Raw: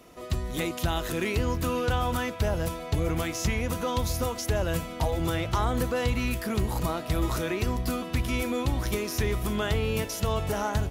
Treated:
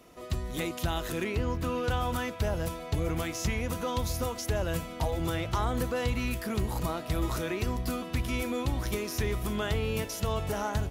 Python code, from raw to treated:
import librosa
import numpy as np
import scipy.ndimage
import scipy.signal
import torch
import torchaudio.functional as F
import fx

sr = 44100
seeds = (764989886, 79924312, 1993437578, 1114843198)

y = fx.high_shelf(x, sr, hz=fx.line((1.23, 3700.0), (1.83, 6400.0)), db=-9.0, at=(1.23, 1.83), fade=0.02)
y = F.gain(torch.from_numpy(y), -3.0).numpy()